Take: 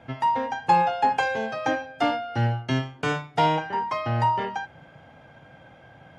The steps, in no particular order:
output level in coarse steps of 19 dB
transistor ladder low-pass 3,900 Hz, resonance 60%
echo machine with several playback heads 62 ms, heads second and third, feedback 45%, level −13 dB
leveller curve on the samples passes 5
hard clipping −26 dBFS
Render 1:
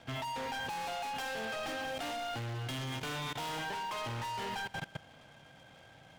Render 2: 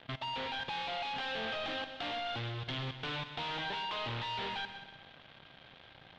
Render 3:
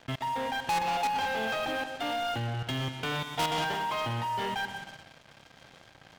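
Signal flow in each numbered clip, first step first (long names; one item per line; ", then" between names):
transistor ladder low-pass, then hard clipping, then leveller curve on the samples, then echo machine with several playback heads, then output level in coarse steps
leveller curve on the samples, then hard clipping, then transistor ladder low-pass, then output level in coarse steps, then echo machine with several playback heads
output level in coarse steps, then transistor ladder low-pass, then hard clipping, then echo machine with several playback heads, then leveller curve on the samples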